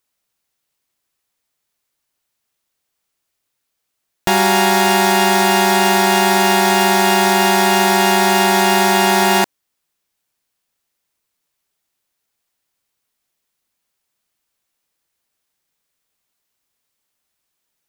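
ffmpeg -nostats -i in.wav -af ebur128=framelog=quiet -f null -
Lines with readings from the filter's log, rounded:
Integrated loudness:
  I:         -12.9 LUFS
  Threshold: -22.9 LUFS
Loudness range:
  LRA:         9.4 LU
  Threshold: -34.6 LUFS
  LRA low:   -22.0 LUFS
  LRA high:  -12.6 LUFS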